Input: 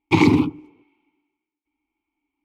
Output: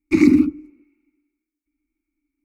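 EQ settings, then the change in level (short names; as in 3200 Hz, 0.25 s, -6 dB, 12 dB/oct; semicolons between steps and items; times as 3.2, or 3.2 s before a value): low shelf 140 Hz +12 dB; fixed phaser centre 310 Hz, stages 4; fixed phaser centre 650 Hz, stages 8; +2.0 dB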